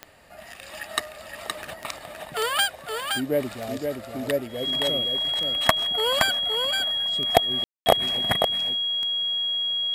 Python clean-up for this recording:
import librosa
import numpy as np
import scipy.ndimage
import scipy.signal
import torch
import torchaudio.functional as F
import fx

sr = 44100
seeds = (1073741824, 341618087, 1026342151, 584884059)

y = fx.fix_declick_ar(x, sr, threshold=10.0)
y = fx.notch(y, sr, hz=3300.0, q=30.0)
y = fx.fix_ambience(y, sr, seeds[0], print_start_s=0.0, print_end_s=0.5, start_s=7.64, end_s=7.86)
y = fx.fix_echo_inverse(y, sr, delay_ms=519, level_db=-5.0)